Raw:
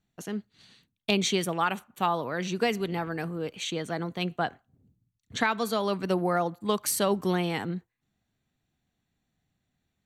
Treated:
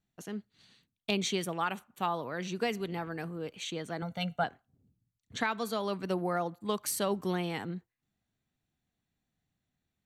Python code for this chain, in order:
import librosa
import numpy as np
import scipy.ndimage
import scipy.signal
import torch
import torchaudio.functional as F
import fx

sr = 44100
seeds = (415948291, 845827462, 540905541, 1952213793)

y = fx.comb(x, sr, ms=1.4, depth=0.89, at=(4.02, 4.44))
y = y * 10.0 ** (-5.5 / 20.0)